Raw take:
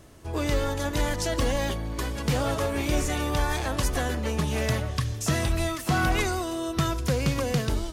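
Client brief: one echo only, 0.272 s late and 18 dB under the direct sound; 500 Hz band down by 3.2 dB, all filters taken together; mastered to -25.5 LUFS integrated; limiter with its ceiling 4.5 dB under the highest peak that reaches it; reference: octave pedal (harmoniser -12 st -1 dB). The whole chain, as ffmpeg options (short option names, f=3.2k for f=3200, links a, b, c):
-filter_complex "[0:a]equalizer=f=500:t=o:g=-4,alimiter=limit=-19.5dB:level=0:latency=1,aecho=1:1:272:0.126,asplit=2[a][b];[b]asetrate=22050,aresample=44100,atempo=2,volume=-1dB[c];[a][c]amix=inputs=2:normalize=0,volume=2.5dB"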